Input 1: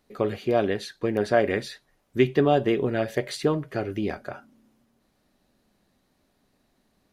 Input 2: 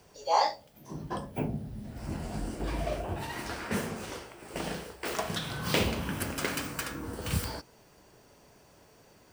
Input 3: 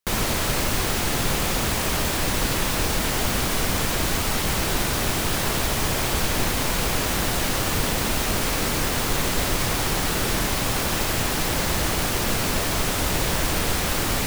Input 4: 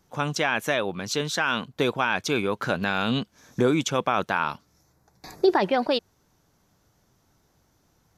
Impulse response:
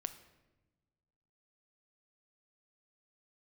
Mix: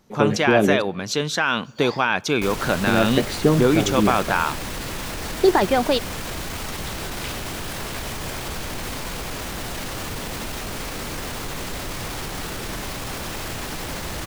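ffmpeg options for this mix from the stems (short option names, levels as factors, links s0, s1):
-filter_complex "[0:a]equalizer=f=200:w=1.5:g=8.5,volume=0.944,asplit=3[s0][s1][s2];[s0]atrim=end=0.82,asetpts=PTS-STARTPTS,afade=t=out:st=0.816:d=0.004:c=hsin[s3];[s1]atrim=start=0.82:end=2.87,asetpts=PTS-STARTPTS,volume=0[s4];[s2]atrim=start=2.87,asetpts=PTS-STARTPTS,afade=t=in:d=0.004:c=hsin[s5];[s3][s4][s5]concat=n=3:v=0:a=1,asplit=2[s6][s7];[s7]volume=0.668[s8];[1:a]highpass=1400,adelay=1500,volume=0.596[s9];[2:a]alimiter=limit=0.106:level=0:latency=1:release=23,adelay=2350,volume=0.891[s10];[3:a]volume=1.26,asplit=2[s11][s12];[s12]volume=0.282[s13];[4:a]atrim=start_sample=2205[s14];[s8][s13]amix=inputs=2:normalize=0[s15];[s15][s14]afir=irnorm=-1:irlink=0[s16];[s6][s9][s10][s11][s16]amix=inputs=5:normalize=0,highshelf=f=8100:g=-4"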